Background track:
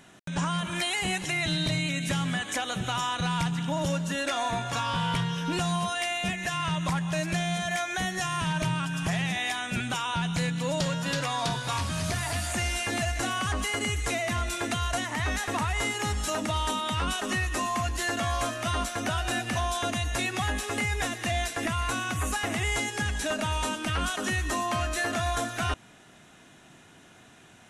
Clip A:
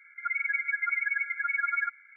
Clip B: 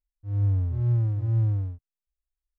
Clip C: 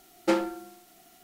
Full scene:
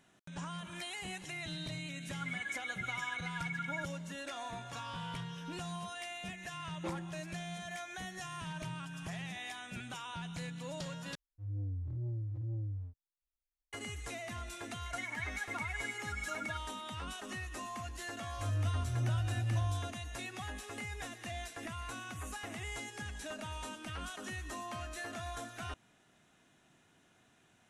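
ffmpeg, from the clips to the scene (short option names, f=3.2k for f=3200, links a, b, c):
-filter_complex "[1:a]asplit=2[a][b];[2:a]asplit=2[c][d];[0:a]volume=-14dB[e];[3:a]lowpass=2.8k[f];[c]asoftclip=type=tanh:threshold=-26dB[g];[d]volume=21.5dB,asoftclip=hard,volume=-21.5dB[h];[e]asplit=2[i][j];[i]atrim=end=11.154[k];[g]atrim=end=2.58,asetpts=PTS-STARTPTS,volume=-9dB[l];[j]atrim=start=13.726[m];[a]atrim=end=2.16,asetpts=PTS-STARTPTS,volume=-11.5dB,afade=t=in:d=0.004:c=hsin,afade=t=out:st=2.156:d=0.004:c=hsin,adelay=1960[n];[f]atrim=end=1.23,asetpts=PTS-STARTPTS,volume=-17.5dB,afade=t=in:d=0.004:c=hsin,afade=t=out:st=1.226:d=0.004:c=hsin,adelay=6560[o];[b]atrim=end=2.16,asetpts=PTS-STARTPTS,volume=-12.5dB,afade=t=in:d=0.004:c=hsin,afade=t=out:st=2.156:d=0.004:c=hsin,adelay=14680[p];[h]atrim=end=2.58,asetpts=PTS-STARTPTS,volume=-8.5dB,afade=t=in:d=0.004:c=hsin,afade=t=out:st=2.576:d=0.004:c=hsin,adelay=18140[q];[k][l]acrossfade=d=0.004:c1=hsin:c2=hsin[r];[r][m]acrossfade=d=0.004:c1=hsin:c2=hsin[s];[s][n][o][p][q]amix=inputs=5:normalize=0"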